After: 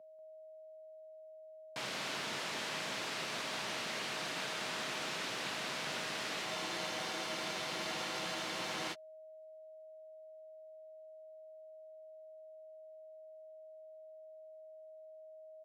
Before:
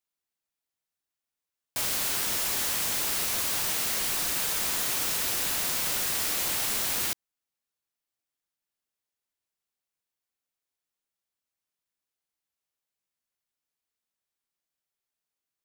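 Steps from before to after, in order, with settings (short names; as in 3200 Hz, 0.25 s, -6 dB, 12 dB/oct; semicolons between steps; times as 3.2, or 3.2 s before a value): LPF 3700 Hz 12 dB/oct; whine 630 Hz -49 dBFS; HPF 130 Hz 24 dB/oct; on a send: echo 0.189 s -8.5 dB; on the sum: spectral freeze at 6.48, 2.44 s; gain -4.5 dB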